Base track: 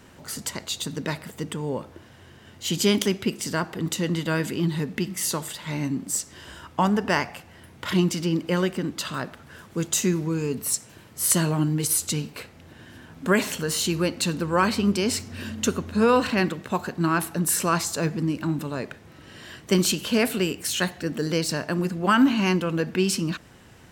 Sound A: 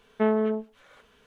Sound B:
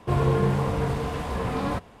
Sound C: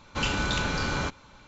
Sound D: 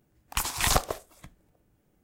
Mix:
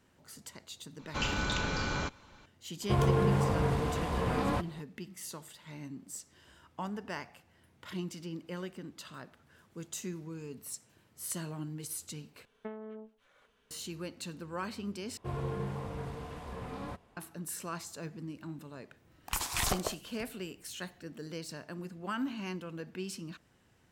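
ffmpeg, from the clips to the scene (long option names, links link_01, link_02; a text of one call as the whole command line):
ffmpeg -i bed.wav -i cue0.wav -i cue1.wav -i cue2.wav -i cue3.wav -filter_complex "[2:a]asplit=2[link_01][link_02];[0:a]volume=-17dB[link_03];[link_01]alimiter=limit=-14dB:level=0:latency=1:release=71[link_04];[1:a]acompressor=threshold=-31dB:ratio=12:attack=77:release=280:knee=6:detection=rms[link_05];[4:a]alimiter=limit=-14dB:level=0:latency=1:release=53[link_06];[link_03]asplit=3[link_07][link_08][link_09];[link_07]atrim=end=12.454[link_10];[link_05]atrim=end=1.26,asetpts=PTS-STARTPTS,volume=-11dB[link_11];[link_08]atrim=start=13.706:end=15.174[link_12];[link_02]atrim=end=2,asetpts=PTS-STARTPTS,volume=-14dB[link_13];[link_09]atrim=start=17.166[link_14];[3:a]atrim=end=1.47,asetpts=PTS-STARTPTS,volume=-5dB,afade=type=in:duration=0.004:curve=hsin,afade=type=out:start_time=1.466:duration=0.004:curve=hsin,adelay=990[link_15];[link_04]atrim=end=2,asetpts=PTS-STARTPTS,volume=-3.5dB,afade=type=in:duration=0.004:curve=hsin,afade=type=out:start_time=1.996:duration=0.004:curve=hsin,adelay=2820[link_16];[link_06]atrim=end=2.03,asetpts=PTS-STARTPTS,volume=-3.5dB,afade=type=in:duration=0.004:curve=hsin,afade=type=out:start_time=2.026:duration=0.004:curve=hsin,adelay=18960[link_17];[link_10][link_11]acrossfade=duration=0.004:curve1=hsin:curve2=hsin[link_18];[link_18][link_12]acrossfade=duration=0.004:curve1=hsin:curve2=hsin[link_19];[link_19][link_13]acrossfade=duration=0.004:curve1=hsin:curve2=hsin[link_20];[link_20][link_14]acrossfade=duration=0.004:curve1=hsin:curve2=hsin[link_21];[link_21][link_15][link_16][link_17]amix=inputs=4:normalize=0" out.wav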